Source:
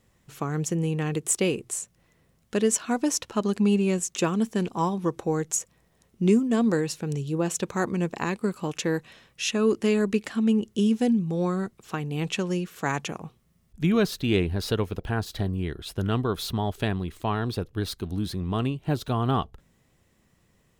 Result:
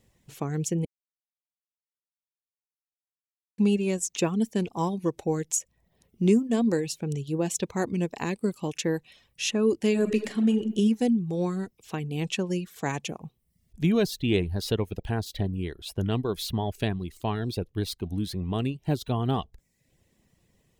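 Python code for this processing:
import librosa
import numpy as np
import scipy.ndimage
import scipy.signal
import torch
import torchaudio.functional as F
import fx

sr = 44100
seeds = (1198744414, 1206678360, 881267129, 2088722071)

y = fx.reverb_throw(x, sr, start_s=9.9, length_s=0.74, rt60_s=1.0, drr_db=3.5)
y = fx.edit(y, sr, fx.silence(start_s=0.85, length_s=2.73), tone=tone)
y = fx.peak_eq(y, sr, hz=1300.0, db=-9.0, octaves=0.69)
y = fx.dereverb_blind(y, sr, rt60_s=0.59)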